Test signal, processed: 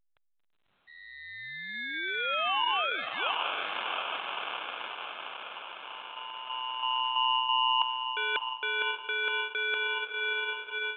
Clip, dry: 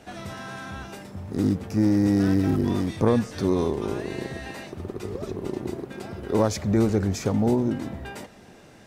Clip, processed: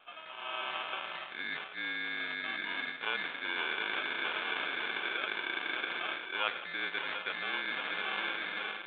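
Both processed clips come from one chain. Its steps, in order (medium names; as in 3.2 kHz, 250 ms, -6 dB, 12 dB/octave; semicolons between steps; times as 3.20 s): frequency shift -29 Hz; elliptic low-pass 2.4 kHz, stop band 50 dB; on a send: echo that smears into a reverb 671 ms, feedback 64%, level -8.5 dB; on the sum: sample-and-hold 23×; reverse; compression 16:1, threshold -30 dBFS; reverse; high-pass 1.4 kHz 12 dB/octave; level rider gain up to 12 dB; A-law 64 kbps 8 kHz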